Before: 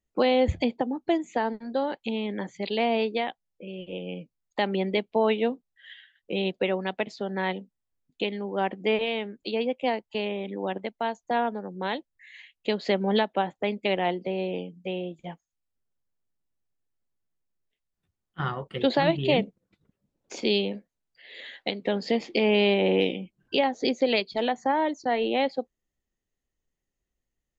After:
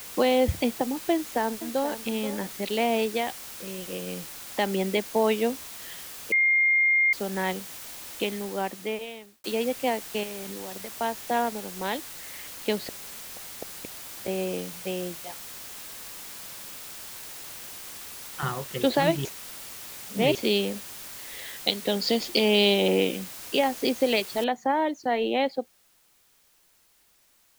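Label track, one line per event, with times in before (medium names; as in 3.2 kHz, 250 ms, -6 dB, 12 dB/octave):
1.130000	1.890000	echo throw 480 ms, feedback 20%, level -12 dB
6.320000	7.130000	bleep 2.12 kHz -18 dBFS
8.290000	9.440000	fade out
10.230000	10.940000	compression 12:1, threshold -34 dBFS
11.450000	11.880000	companding laws mixed up coded by A
12.850000	14.280000	inverted gate shuts at -21 dBFS, range -40 dB
15.230000	18.430000	high-pass 480 Hz
19.250000	20.350000	reverse
21.600000	22.880000	resonant high shelf 2.9 kHz +9 dB, Q 1.5
24.440000	24.440000	noise floor step -41 dB -63 dB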